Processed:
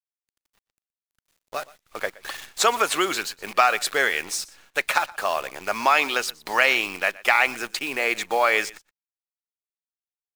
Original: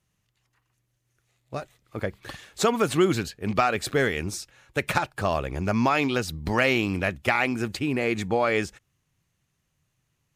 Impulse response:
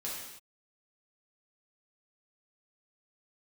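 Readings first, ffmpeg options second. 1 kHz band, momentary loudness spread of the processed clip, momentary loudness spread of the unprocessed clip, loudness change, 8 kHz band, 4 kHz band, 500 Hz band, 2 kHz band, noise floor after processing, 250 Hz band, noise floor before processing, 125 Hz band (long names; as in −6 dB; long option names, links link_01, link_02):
+4.5 dB, 14 LU, 14 LU, +3.0 dB, +7.0 dB, +6.0 dB, −1.5 dB, +6.0 dB, below −85 dBFS, −10.0 dB, −75 dBFS, below −20 dB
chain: -filter_complex "[0:a]highpass=730,dynaudnorm=framelen=310:gausssize=3:maxgain=7dB,acrusher=bits=7:dc=4:mix=0:aa=0.000001,asplit=2[link_01][link_02];[link_02]aecho=0:1:121:0.0841[link_03];[link_01][link_03]amix=inputs=2:normalize=0"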